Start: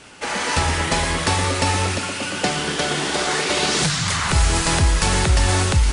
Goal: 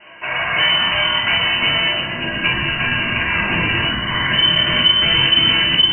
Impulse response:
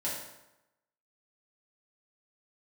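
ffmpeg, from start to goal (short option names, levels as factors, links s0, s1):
-filter_complex "[0:a]lowpass=f=2600:t=q:w=0.5098,lowpass=f=2600:t=q:w=0.6013,lowpass=f=2600:t=q:w=0.9,lowpass=f=2600:t=q:w=2.563,afreqshift=-3100[s0];[1:a]atrim=start_sample=2205,atrim=end_sample=3969,asetrate=48510,aresample=44100[s1];[s0][s1]afir=irnorm=-1:irlink=0,asubboost=boost=12:cutoff=200,volume=1.26"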